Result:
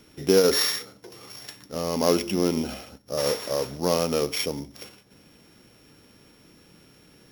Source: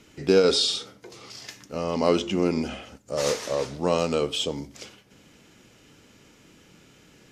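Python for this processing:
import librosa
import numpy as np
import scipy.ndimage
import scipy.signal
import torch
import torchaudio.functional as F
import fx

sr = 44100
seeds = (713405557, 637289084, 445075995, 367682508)

y = np.r_[np.sort(x[:len(x) // 8 * 8].reshape(-1, 8), axis=1).ravel(), x[len(x) // 8 * 8:]]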